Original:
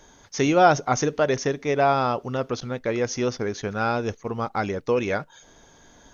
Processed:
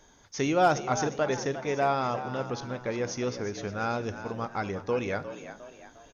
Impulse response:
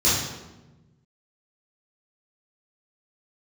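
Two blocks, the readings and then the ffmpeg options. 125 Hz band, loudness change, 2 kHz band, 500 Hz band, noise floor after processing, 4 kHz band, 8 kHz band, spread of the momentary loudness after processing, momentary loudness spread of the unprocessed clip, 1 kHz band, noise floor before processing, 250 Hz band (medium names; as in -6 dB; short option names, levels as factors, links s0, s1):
-5.5 dB, -6.0 dB, -5.5 dB, -6.0 dB, -58 dBFS, -5.5 dB, no reading, 13 LU, 11 LU, -5.5 dB, -54 dBFS, -6.0 dB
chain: -filter_complex "[0:a]asplit=5[s0][s1][s2][s3][s4];[s1]adelay=355,afreqshift=68,volume=0.251[s5];[s2]adelay=710,afreqshift=136,volume=0.108[s6];[s3]adelay=1065,afreqshift=204,volume=0.0462[s7];[s4]adelay=1420,afreqshift=272,volume=0.02[s8];[s0][s5][s6][s7][s8]amix=inputs=5:normalize=0,asplit=2[s9][s10];[1:a]atrim=start_sample=2205[s11];[s10][s11]afir=irnorm=-1:irlink=0,volume=0.0211[s12];[s9][s12]amix=inputs=2:normalize=0,asoftclip=type=hard:threshold=0.398,volume=0.501"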